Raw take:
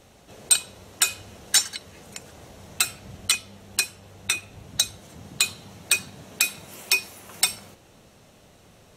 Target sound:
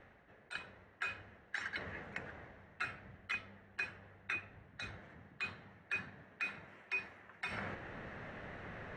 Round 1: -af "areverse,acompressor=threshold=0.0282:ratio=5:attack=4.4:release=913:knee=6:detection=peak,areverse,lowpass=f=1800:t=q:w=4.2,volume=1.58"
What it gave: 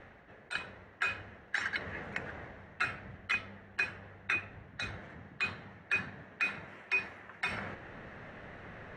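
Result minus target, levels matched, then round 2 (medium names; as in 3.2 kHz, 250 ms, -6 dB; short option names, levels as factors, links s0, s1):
compression: peak gain reduction -7 dB
-af "areverse,acompressor=threshold=0.01:ratio=5:attack=4.4:release=913:knee=6:detection=peak,areverse,lowpass=f=1800:t=q:w=4.2,volume=1.58"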